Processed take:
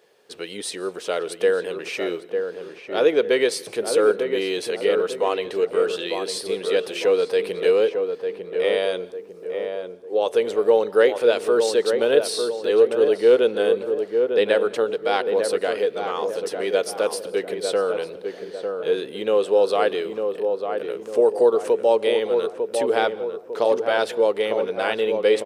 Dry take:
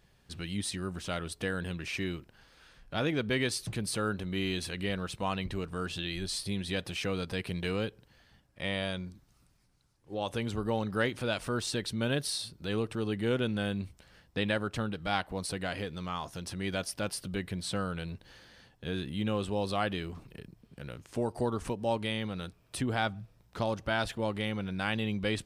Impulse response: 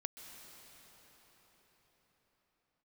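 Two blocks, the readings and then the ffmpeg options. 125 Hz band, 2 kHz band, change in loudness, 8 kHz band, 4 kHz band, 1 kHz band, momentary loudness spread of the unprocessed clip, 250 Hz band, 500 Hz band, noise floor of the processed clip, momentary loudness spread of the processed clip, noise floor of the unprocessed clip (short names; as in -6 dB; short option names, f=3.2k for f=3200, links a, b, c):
under -10 dB, +6.5 dB, +12.0 dB, +5.5 dB, +6.0 dB, +9.0 dB, 9 LU, +3.0 dB, +18.0 dB, -40 dBFS, 11 LU, -66 dBFS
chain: -filter_complex "[0:a]highpass=f=450:t=q:w=5.5,asplit=2[a][b];[b]adelay=900,lowpass=f=1.2k:p=1,volume=-5dB,asplit=2[c][d];[d]adelay=900,lowpass=f=1.2k:p=1,volume=0.48,asplit=2[e][f];[f]adelay=900,lowpass=f=1.2k:p=1,volume=0.48,asplit=2[g][h];[h]adelay=900,lowpass=f=1.2k:p=1,volume=0.48,asplit=2[i][j];[j]adelay=900,lowpass=f=1.2k:p=1,volume=0.48,asplit=2[k][l];[l]adelay=900,lowpass=f=1.2k:p=1,volume=0.48[m];[a][c][e][g][i][k][m]amix=inputs=7:normalize=0,asplit=2[n][o];[1:a]atrim=start_sample=2205,afade=t=out:st=0.26:d=0.01,atrim=end_sample=11907[p];[o][p]afir=irnorm=-1:irlink=0,volume=-5.5dB[q];[n][q]amix=inputs=2:normalize=0,volume=3dB"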